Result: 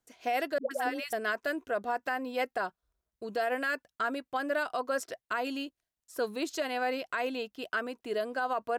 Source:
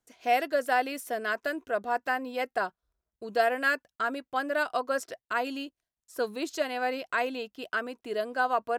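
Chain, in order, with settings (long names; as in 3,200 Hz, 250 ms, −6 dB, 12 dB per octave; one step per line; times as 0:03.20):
brickwall limiter −22 dBFS, peak gain reduction 9 dB
0:00.58–0:01.13: all-pass dispersion highs, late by 128 ms, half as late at 540 Hz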